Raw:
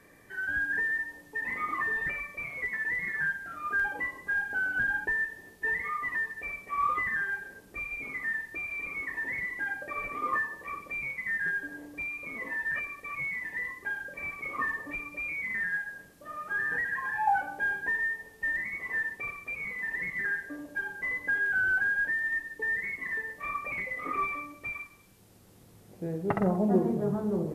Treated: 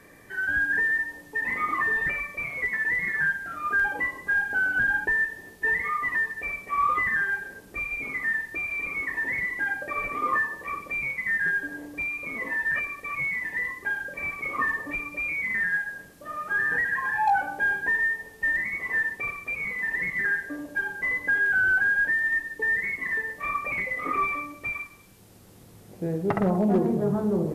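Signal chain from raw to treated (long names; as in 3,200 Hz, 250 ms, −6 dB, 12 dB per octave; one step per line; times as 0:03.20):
in parallel at −1 dB: brickwall limiter −23.5 dBFS, peak gain reduction 10 dB
on the sum: hard clipping −15.5 dBFS, distortion −32 dB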